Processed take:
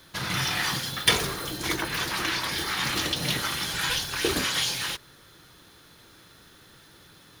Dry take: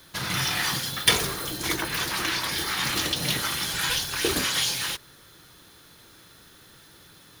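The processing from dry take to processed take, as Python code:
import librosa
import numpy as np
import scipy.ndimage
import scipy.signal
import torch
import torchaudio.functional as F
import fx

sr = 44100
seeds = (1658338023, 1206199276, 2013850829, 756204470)

y = fx.high_shelf(x, sr, hz=6900.0, db=-5.5)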